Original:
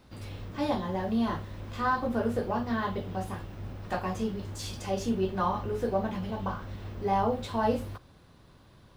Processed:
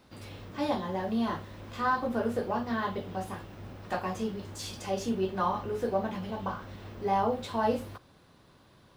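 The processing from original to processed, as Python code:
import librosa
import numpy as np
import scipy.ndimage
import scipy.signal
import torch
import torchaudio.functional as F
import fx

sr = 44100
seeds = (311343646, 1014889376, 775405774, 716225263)

y = fx.low_shelf(x, sr, hz=98.0, db=-11.5)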